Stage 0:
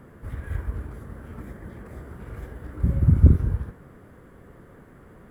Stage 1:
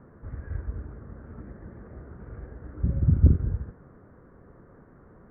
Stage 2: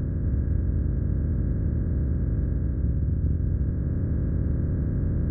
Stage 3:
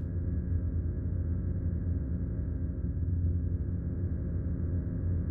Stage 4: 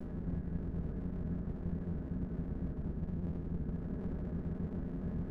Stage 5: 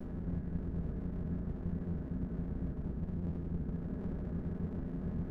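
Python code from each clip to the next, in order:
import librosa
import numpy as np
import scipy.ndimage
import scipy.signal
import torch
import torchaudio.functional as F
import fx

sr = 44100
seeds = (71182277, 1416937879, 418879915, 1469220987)

y1 = scipy.signal.sosfilt(scipy.signal.butter(4, 1600.0, 'lowpass', fs=sr, output='sos'), x)
y1 = fx.dynamic_eq(y1, sr, hz=1000.0, q=1.9, threshold_db=-54.0, ratio=4.0, max_db=-6)
y1 = y1 * 10.0 ** (-3.5 / 20.0)
y2 = fx.bin_compress(y1, sr, power=0.2)
y2 = fx.rider(y2, sr, range_db=10, speed_s=0.5)
y2 = y2 * 10.0 ** (-7.5 / 20.0)
y3 = fx.comb_fb(y2, sr, f0_hz=88.0, decay_s=0.32, harmonics='all', damping=0.0, mix_pct=80)
y4 = fx.lower_of_two(y3, sr, delay_ms=4.7)
y4 = fx.rider(y4, sr, range_db=10, speed_s=0.5)
y4 = y4 * 10.0 ** (-3.0 / 20.0)
y5 = fx.doubler(y4, sr, ms=35.0, db=-12.5)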